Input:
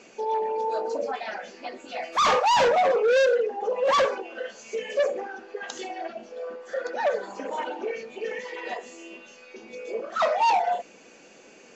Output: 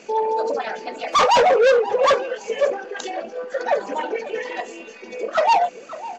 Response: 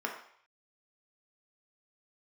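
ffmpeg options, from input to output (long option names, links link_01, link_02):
-filter_complex "[0:a]asplit=2[link_01][link_02];[link_02]adelay=1039,lowpass=frequency=1900:poles=1,volume=-15dB,asplit=2[link_03][link_04];[link_04]adelay=1039,lowpass=frequency=1900:poles=1,volume=0.2[link_05];[link_01][link_03][link_05]amix=inputs=3:normalize=0,atempo=1.9,volume=6dB"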